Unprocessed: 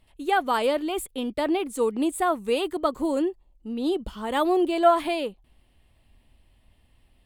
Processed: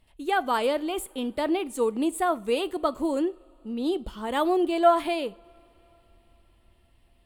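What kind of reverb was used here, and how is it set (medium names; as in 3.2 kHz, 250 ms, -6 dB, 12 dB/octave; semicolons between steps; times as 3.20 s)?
two-slope reverb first 0.4 s, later 4.5 s, from -22 dB, DRR 17 dB; trim -1.5 dB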